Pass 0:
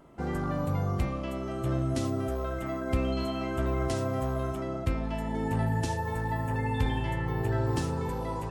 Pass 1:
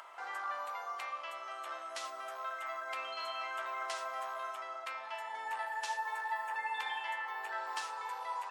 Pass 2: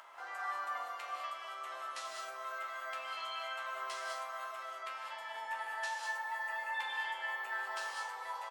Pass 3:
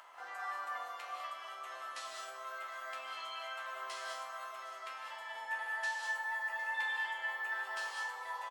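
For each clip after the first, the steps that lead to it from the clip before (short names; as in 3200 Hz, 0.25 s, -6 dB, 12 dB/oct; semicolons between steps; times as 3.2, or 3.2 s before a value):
HPF 890 Hz 24 dB/oct; high shelf 6800 Hz -12 dB; upward compressor, threshold -44 dBFS; gain +1.5 dB
resonator bank C#2 sus4, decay 0.22 s; echo 0.572 s -22 dB; non-linear reverb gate 0.23 s rising, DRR 0 dB; gain +6 dB
resonator 250 Hz, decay 0.63 s, harmonics all, mix 80%; echo 0.759 s -17.5 dB; gain +11 dB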